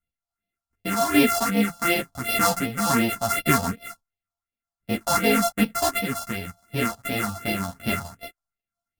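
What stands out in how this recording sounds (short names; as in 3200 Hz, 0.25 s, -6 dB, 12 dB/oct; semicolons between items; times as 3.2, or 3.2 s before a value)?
a buzz of ramps at a fixed pitch in blocks of 64 samples; phasing stages 4, 2.7 Hz, lowest notch 360–1200 Hz; random-step tremolo; a shimmering, thickened sound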